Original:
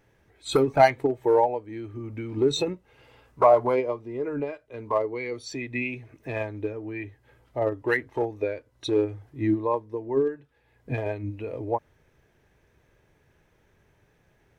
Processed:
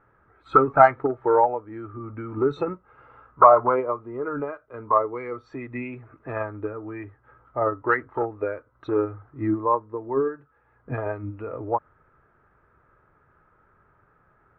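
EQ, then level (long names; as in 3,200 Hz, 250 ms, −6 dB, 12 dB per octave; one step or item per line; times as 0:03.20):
low-pass with resonance 1,300 Hz, resonance Q 10
−1.0 dB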